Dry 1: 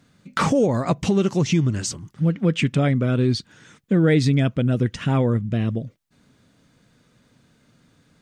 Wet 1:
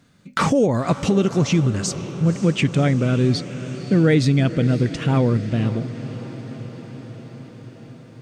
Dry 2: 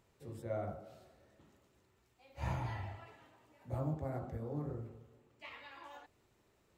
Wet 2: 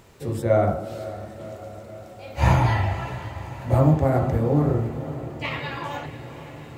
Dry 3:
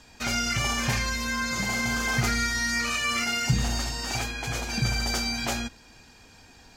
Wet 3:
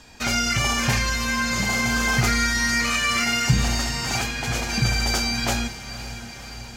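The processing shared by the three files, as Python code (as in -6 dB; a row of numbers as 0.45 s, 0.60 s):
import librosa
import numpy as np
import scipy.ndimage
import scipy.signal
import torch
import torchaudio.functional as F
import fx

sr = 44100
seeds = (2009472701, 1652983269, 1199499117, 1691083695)

y = fx.echo_diffused(x, sr, ms=539, feedback_pct=70, wet_db=-14.0)
y = y * 10.0 ** (-6 / 20.0) / np.max(np.abs(y))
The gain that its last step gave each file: +1.5 dB, +20.0 dB, +4.5 dB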